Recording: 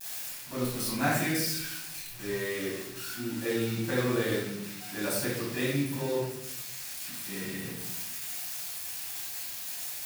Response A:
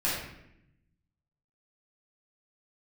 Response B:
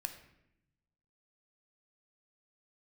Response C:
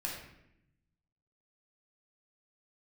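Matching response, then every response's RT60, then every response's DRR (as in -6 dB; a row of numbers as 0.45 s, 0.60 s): A; 0.80 s, 0.80 s, 0.80 s; -9.0 dB, 7.0 dB, -3.0 dB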